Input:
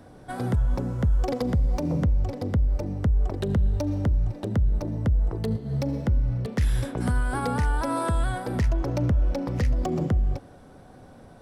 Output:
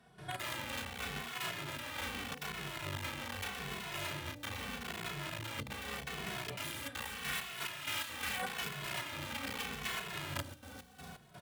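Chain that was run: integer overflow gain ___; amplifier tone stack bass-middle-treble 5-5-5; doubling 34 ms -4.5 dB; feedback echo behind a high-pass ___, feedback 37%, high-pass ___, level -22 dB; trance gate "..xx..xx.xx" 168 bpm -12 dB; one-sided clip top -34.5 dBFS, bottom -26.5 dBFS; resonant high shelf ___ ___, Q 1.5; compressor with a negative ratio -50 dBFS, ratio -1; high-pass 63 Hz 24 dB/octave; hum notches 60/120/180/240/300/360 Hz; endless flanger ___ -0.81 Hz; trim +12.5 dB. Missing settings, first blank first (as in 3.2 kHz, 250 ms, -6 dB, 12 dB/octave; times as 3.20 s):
24.5 dB, 936 ms, 4.2 kHz, 3.9 kHz, -6 dB, 2.3 ms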